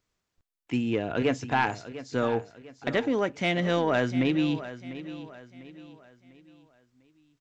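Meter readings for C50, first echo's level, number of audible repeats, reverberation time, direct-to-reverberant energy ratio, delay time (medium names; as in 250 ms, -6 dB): no reverb, -14.0 dB, 3, no reverb, no reverb, 698 ms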